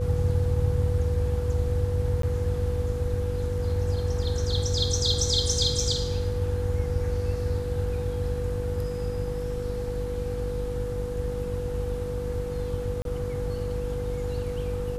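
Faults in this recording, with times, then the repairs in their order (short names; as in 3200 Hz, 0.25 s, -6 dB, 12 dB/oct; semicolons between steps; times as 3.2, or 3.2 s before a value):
buzz 50 Hz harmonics 10 -33 dBFS
tone 490 Hz -31 dBFS
2.22–2.23 gap 13 ms
13.02–13.05 gap 32 ms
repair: de-hum 50 Hz, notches 10; notch 490 Hz, Q 30; interpolate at 2.22, 13 ms; interpolate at 13.02, 32 ms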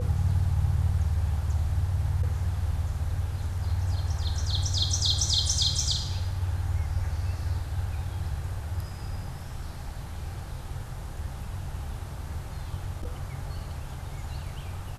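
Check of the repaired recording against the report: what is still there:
none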